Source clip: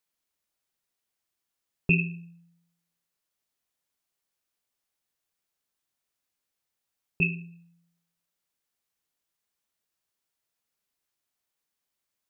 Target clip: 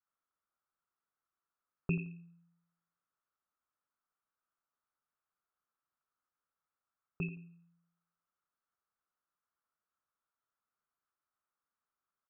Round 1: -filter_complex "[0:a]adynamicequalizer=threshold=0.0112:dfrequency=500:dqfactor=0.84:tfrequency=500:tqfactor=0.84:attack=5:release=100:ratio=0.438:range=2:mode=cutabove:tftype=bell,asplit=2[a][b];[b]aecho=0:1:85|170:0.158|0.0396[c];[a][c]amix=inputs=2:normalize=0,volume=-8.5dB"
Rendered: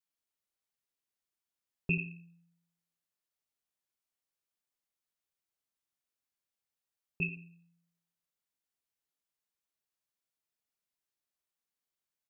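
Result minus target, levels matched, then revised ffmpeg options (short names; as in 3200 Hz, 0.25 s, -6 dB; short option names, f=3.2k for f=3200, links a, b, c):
1000 Hz band -10.5 dB
-filter_complex "[0:a]adynamicequalizer=threshold=0.0112:dfrequency=500:dqfactor=0.84:tfrequency=500:tqfactor=0.84:attack=5:release=100:ratio=0.438:range=2:mode=cutabove:tftype=bell,lowpass=f=1.3k:t=q:w=5.1,asplit=2[a][b];[b]aecho=0:1:85|170:0.158|0.0396[c];[a][c]amix=inputs=2:normalize=0,volume=-8.5dB"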